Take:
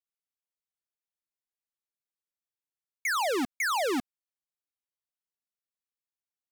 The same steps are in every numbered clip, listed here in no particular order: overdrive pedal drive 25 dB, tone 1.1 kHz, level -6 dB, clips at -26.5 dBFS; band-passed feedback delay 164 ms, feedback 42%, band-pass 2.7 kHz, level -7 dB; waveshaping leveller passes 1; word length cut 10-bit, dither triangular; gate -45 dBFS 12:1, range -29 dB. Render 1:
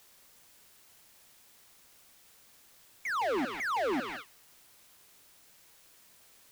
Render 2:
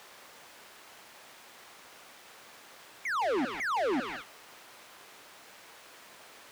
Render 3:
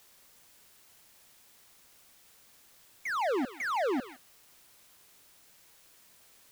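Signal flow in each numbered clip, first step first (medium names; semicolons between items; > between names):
waveshaping leveller > band-passed feedback delay > gate > overdrive pedal > word length cut; band-passed feedback delay > gate > word length cut > waveshaping leveller > overdrive pedal; waveshaping leveller > overdrive pedal > band-passed feedback delay > gate > word length cut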